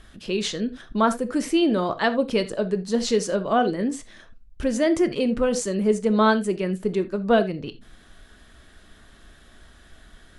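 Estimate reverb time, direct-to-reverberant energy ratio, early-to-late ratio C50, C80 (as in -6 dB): not exponential, 10.5 dB, 15.5 dB, 22.0 dB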